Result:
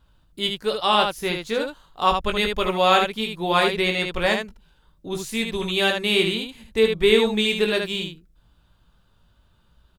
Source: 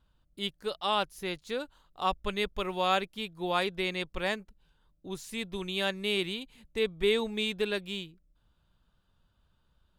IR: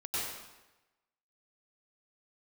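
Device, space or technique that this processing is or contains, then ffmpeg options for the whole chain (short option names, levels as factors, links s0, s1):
slapback doubling: -filter_complex "[0:a]asplit=3[s0][s1][s2];[s1]adelay=18,volume=0.501[s3];[s2]adelay=76,volume=0.562[s4];[s0][s3][s4]amix=inputs=3:normalize=0,volume=2.66"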